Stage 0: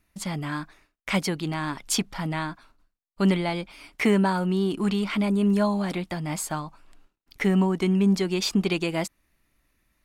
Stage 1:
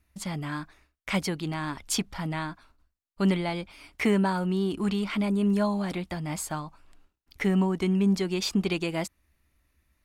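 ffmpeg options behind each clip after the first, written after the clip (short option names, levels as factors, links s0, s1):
-af "equalizer=f=71:w=2.8:g=14,volume=0.708"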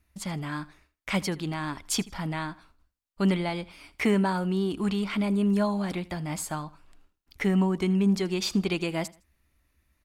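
-af "aecho=1:1:80|160:0.0891|0.025"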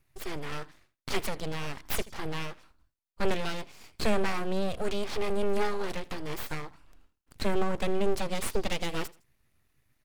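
-af "aeval=exprs='abs(val(0))':c=same"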